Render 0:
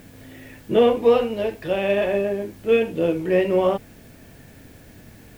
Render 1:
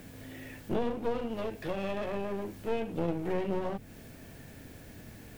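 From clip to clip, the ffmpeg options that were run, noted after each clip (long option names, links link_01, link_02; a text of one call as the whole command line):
ffmpeg -i in.wav -filter_complex "[0:a]acrossover=split=290[link_01][link_02];[link_02]acompressor=threshold=-29dB:ratio=5[link_03];[link_01][link_03]amix=inputs=2:normalize=0,aeval=exprs='clip(val(0),-1,0.015)':channel_layout=same,volume=-3dB" out.wav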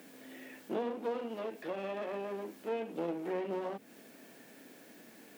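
ffmpeg -i in.wav -filter_complex "[0:a]highpass=frequency=230:width=0.5412,highpass=frequency=230:width=1.3066,acrossover=split=2700[link_01][link_02];[link_02]alimiter=level_in=23dB:limit=-24dB:level=0:latency=1:release=137,volume=-23dB[link_03];[link_01][link_03]amix=inputs=2:normalize=0,volume=-3dB" out.wav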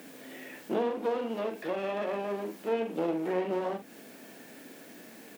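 ffmpeg -i in.wav -filter_complex "[0:a]asplit=2[link_01][link_02];[link_02]adelay=44,volume=-9dB[link_03];[link_01][link_03]amix=inputs=2:normalize=0,volume=5.5dB" out.wav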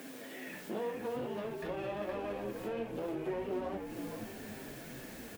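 ffmpeg -i in.wav -filter_complex "[0:a]acompressor=threshold=-44dB:ratio=2,flanger=delay=7.5:depth=7.1:regen=40:speed=0.59:shape=sinusoidal,asplit=2[link_01][link_02];[link_02]asplit=6[link_03][link_04][link_05][link_06][link_07][link_08];[link_03]adelay=468,afreqshift=-78,volume=-6dB[link_09];[link_04]adelay=936,afreqshift=-156,volume=-12dB[link_10];[link_05]adelay=1404,afreqshift=-234,volume=-18dB[link_11];[link_06]adelay=1872,afreqshift=-312,volume=-24.1dB[link_12];[link_07]adelay=2340,afreqshift=-390,volume=-30.1dB[link_13];[link_08]adelay=2808,afreqshift=-468,volume=-36.1dB[link_14];[link_09][link_10][link_11][link_12][link_13][link_14]amix=inputs=6:normalize=0[link_15];[link_01][link_15]amix=inputs=2:normalize=0,volume=5dB" out.wav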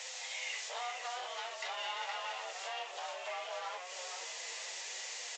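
ffmpeg -i in.wav -af "aderivative,afreqshift=250,volume=18dB" -ar 16000 -c:a pcm_alaw out.wav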